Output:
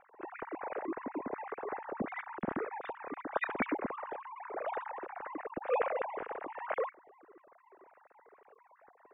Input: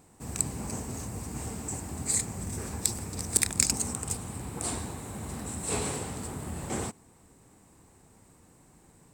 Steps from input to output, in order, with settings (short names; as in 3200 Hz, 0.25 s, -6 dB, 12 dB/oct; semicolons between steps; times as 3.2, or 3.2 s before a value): sine-wave speech; LPF 2000 Hz 24 dB/oct; gain -4.5 dB